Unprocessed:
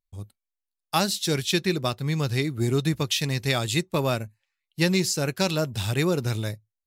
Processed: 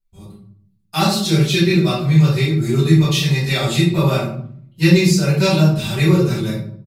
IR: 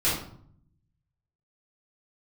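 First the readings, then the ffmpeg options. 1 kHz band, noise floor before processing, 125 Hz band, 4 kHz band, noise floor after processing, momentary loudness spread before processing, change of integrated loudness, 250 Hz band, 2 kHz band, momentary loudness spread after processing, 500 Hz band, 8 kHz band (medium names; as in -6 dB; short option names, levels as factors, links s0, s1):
+6.0 dB, under -85 dBFS, +12.0 dB, +6.0 dB, -59 dBFS, 7 LU, +9.5 dB, +11.5 dB, +6.5 dB, 8 LU, +7.0 dB, +3.5 dB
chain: -filter_complex "[0:a]aecho=1:1:5.2:0.81[s0];[1:a]atrim=start_sample=2205[s1];[s0][s1]afir=irnorm=-1:irlink=0,volume=0.376"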